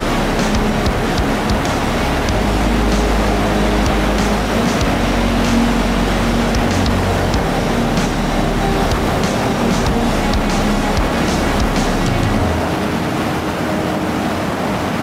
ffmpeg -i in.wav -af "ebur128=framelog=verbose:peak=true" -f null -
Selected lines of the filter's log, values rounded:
Integrated loudness:
  I:         -16.4 LUFS
  Threshold: -26.4 LUFS
Loudness range:
  LRA:         1.5 LU
  Threshold: -36.2 LUFS
  LRA low:   -17.0 LUFS
  LRA high:  -15.5 LUFS
True peak:
  Peak:       -5.0 dBFS